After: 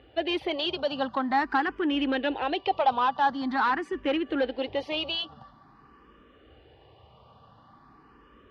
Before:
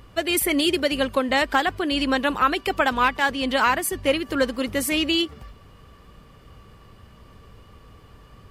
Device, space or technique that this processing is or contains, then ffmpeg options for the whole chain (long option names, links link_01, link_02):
barber-pole phaser into a guitar amplifier: -filter_complex "[0:a]asplit=2[link_01][link_02];[link_02]afreqshift=0.46[link_03];[link_01][link_03]amix=inputs=2:normalize=1,asoftclip=type=tanh:threshold=-19dB,highpass=92,equalizer=frequency=100:width_type=q:width=4:gain=-8,equalizer=frequency=180:width_type=q:width=4:gain=-8,equalizer=frequency=310:width_type=q:width=4:gain=3,equalizer=frequency=800:width_type=q:width=4:gain=8,equalizer=frequency=2200:width_type=q:width=4:gain=-6,lowpass=frequency=3900:width=0.5412,lowpass=frequency=3900:width=1.3066,volume=-1dB"